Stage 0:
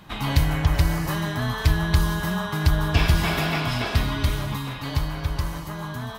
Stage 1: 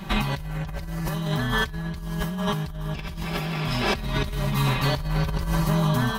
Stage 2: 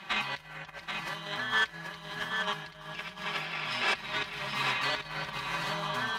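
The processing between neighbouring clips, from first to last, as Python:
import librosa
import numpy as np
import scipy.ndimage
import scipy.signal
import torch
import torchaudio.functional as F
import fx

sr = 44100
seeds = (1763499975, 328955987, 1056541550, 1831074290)

y1 = fx.low_shelf(x, sr, hz=390.0, db=3.5)
y1 = y1 + 0.78 * np.pad(y1, (int(5.2 * sr / 1000.0), 0))[:len(y1)]
y1 = fx.over_compress(y1, sr, threshold_db=-27.0, ratio=-1.0)
y2 = fx.tracing_dist(y1, sr, depth_ms=0.047)
y2 = fx.bandpass_q(y2, sr, hz=2200.0, q=0.86)
y2 = y2 + 10.0 ** (-6.0 / 20.0) * np.pad(y2, (int(783 * sr / 1000.0), 0))[:len(y2)]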